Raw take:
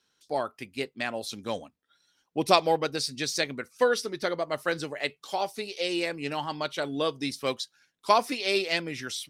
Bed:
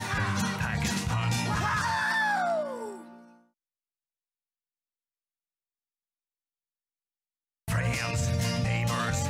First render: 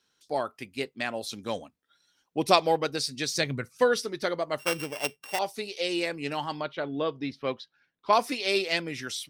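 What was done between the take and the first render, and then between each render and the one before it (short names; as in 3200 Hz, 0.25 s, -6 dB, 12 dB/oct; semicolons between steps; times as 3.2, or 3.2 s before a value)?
3.35–4.02 bell 120 Hz +14.5 dB 0.9 oct; 4.59–5.39 sample sorter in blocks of 16 samples; 6.61–8.13 air absorption 310 m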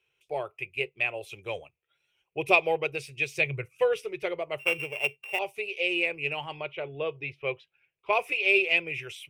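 EQ curve 140 Hz 0 dB, 250 Hz -27 dB, 370 Hz +1 dB, 1700 Hz -10 dB, 2500 Hz +12 dB, 4300 Hz -20 dB, 7300 Hz -12 dB, 13000 Hz -8 dB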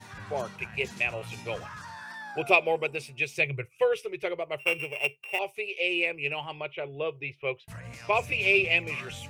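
add bed -14.5 dB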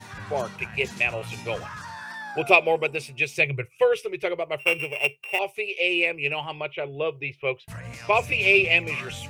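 gain +4.5 dB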